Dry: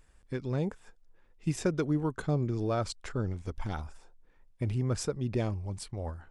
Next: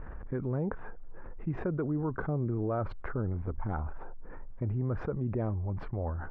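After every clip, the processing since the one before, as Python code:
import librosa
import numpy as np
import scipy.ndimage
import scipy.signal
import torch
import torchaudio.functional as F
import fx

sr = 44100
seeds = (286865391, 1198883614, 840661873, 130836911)

y = scipy.signal.sosfilt(scipy.signal.butter(4, 1500.0, 'lowpass', fs=sr, output='sos'), x)
y = fx.env_flatten(y, sr, amount_pct=70)
y = y * 10.0 ** (-5.0 / 20.0)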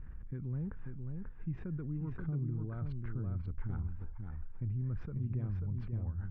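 y = fx.curve_eq(x, sr, hz=(160.0, 640.0, 2800.0), db=(0, -20, -4))
y = y + 10.0 ** (-5.0 / 20.0) * np.pad(y, (int(538 * sr / 1000.0), 0))[:len(y)]
y = y * 10.0 ** (-3.5 / 20.0)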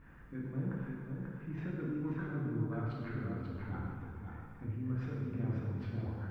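y = fx.highpass(x, sr, hz=420.0, slope=6)
y = fx.rev_gated(y, sr, seeds[0], gate_ms=500, shape='falling', drr_db=-5.5)
y = y * 10.0 ** (3.5 / 20.0)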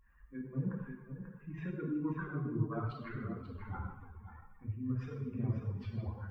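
y = fx.bin_expand(x, sr, power=2.0)
y = fx.peak_eq(y, sr, hz=1100.0, db=8.5, octaves=0.21)
y = y * 10.0 ** (5.0 / 20.0)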